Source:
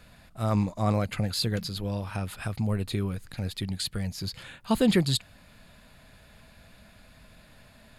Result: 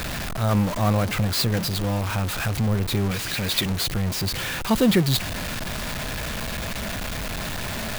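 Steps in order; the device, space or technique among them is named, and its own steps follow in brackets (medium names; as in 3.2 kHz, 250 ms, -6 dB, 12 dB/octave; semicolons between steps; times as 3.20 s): 3.11–3.66 s: frequency weighting D; early CD player with a faulty converter (jump at every zero crossing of -25.5 dBFS; sampling jitter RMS 0.023 ms); trim +2 dB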